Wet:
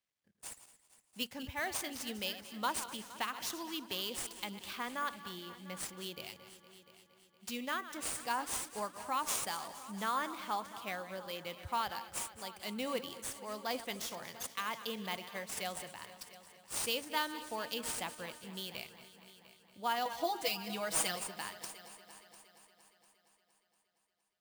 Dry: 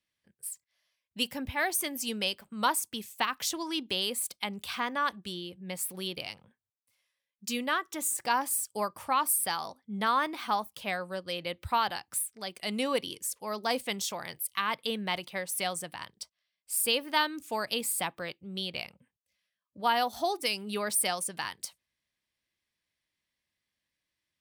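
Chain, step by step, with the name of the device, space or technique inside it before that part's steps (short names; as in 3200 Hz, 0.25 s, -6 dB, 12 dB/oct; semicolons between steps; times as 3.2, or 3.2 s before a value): regenerating reverse delay 0.11 s, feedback 48%, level -13 dB; early companding sampler (sample-rate reducer 18000 Hz, jitter 0%; companded quantiser 8-bit); 20.05–21.16 comb 6.2 ms, depth 100%; multi-head echo 0.233 s, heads all three, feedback 47%, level -20 dB; gain -8 dB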